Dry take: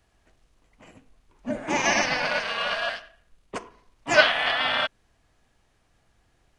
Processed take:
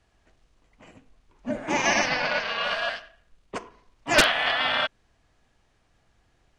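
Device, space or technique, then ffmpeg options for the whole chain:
overflowing digital effects unit: -filter_complex "[0:a]aeval=exprs='(mod(2.51*val(0)+1,2)-1)/2.51':c=same,lowpass=8.2k,asettb=1/sr,asplit=3[a][b][c];[a]atrim=end=2.084[d];[b]atrim=start=2.08:end=2.64,asetpts=PTS-STARTPTS,afade=t=in:d=0.004:c=qsin,afade=t=out:st=0.556:d=0.004:c=qsin,lowpass=f=6.2k:w=0.5412,lowpass=f=6.2k:w=1.3066[e];[c]atrim=start=2.636[f];[d][e]acrossfade=d=0.004:c1=hsin:c2=qsin[g];[g][f]acrossfade=d=0.004:c1=qsin:c2=hsin"

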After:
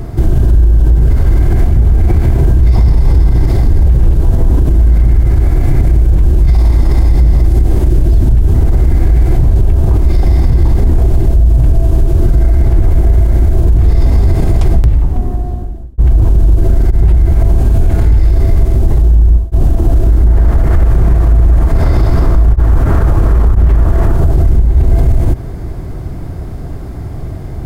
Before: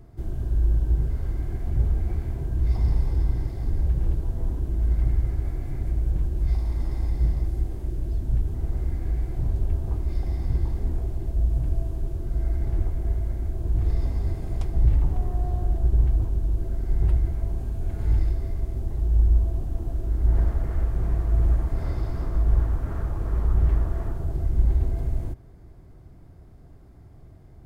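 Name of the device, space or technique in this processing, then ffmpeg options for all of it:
loud club master: -filter_complex "[0:a]asettb=1/sr,asplit=3[a][b][c];[a]atrim=end=15.154[d];[b]atrim=start=15.15:end=16,asetpts=PTS-STARTPTS,afade=t=in:d=0.004:c=qsin,afade=t=out:st=0.846:d=0.004:c=qsin,equalizer=f=240:w=2.1:g=10[e];[c]atrim=start=15.996[f];[d][e]acrossfade=d=0.004:c1=hsin:c2=qsin[g];[g][f]acrossfade=d=0.004:c1=qsin:c2=hsin,acompressor=threshold=-23dB:ratio=2.5,asoftclip=type=hard:threshold=-19dB,alimiter=level_in=27dB:limit=-1dB:release=50:level=0:latency=1,volume=-1dB"

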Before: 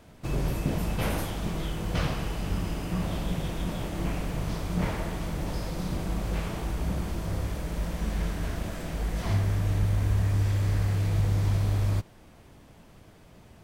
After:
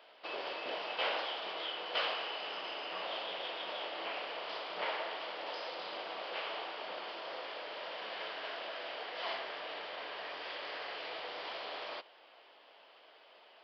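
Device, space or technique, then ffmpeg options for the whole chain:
musical greeting card: -af "aresample=11025,aresample=44100,highpass=f=510:w=0.5412,highpass=f=510:w=1.3066,equalizer=f=3k:t=o:w=0.32:g=8,volume=-1dB"

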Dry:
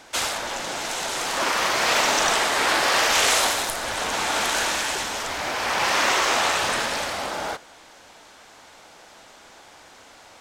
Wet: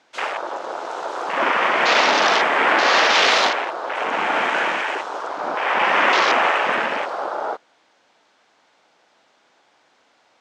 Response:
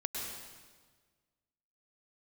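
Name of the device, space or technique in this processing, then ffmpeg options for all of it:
over-cleaned archive recording: -filter_complex "[0:a]asettb=1/sr,asplit=3[a][b][c];[a]atrim=end=3.494[d];[b]atrim=start=3.49:end=3.95,asetpts=PTS-STARTPTS,afade=t=in:d=0.004:c=qsin,afade=t=out:st=0.456:d=0.004:c=qsin,acrossover=split=6100[e][f];[f]acompressor=threshold=-44dB:ratio=4:attack=1:release=60[g];[e][g]amix=inputs=2:normalize=0[h];[c]atrim=start=3.946[i];[d][h]acrossfade=d=0.004:c1=hsin:c2=qsin[j];[j][i]acrossfade=d=0.004:c1=qsin:c2=hsin,highpass=170,lowpass=5.2k,afwtdn=0.0501,volume=5.5dB"

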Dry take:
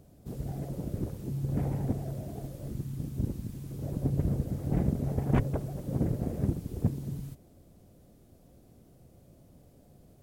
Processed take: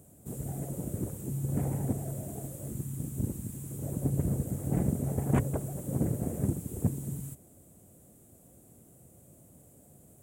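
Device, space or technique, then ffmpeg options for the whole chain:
budget condenser microphone: -af "highpass=73,highshelf=f=6.3k:t=q:w=3:g=9"

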